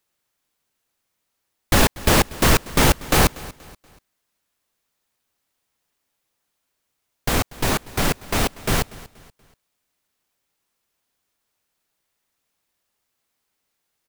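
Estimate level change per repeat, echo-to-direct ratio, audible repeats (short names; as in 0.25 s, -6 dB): -8.5 dB, -19.5 dB, 2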